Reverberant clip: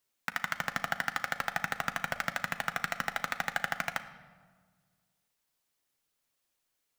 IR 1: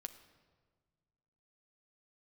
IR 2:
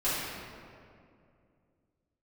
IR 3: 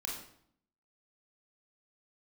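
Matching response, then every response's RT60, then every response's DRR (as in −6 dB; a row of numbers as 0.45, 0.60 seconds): 1; 1.6, 2.4, 0.65 seconds; 8.5, −13.0, −3.0 decibels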